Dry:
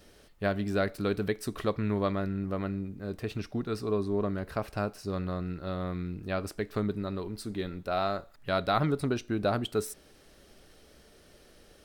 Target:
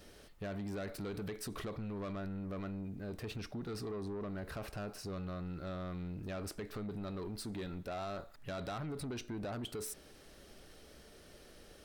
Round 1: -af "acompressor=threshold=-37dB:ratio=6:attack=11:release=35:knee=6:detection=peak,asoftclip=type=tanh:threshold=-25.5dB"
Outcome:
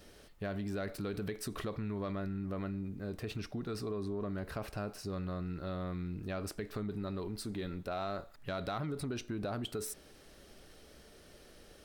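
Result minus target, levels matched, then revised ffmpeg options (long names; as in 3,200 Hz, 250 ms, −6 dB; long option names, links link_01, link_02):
soft clipping: distortion −14 dB
-af "acompressor=threshold=-37dB:ratio=6:attack=11:release=35:knee=6:detection=peak,asoftclip=type=tanh:threshold=-36dB"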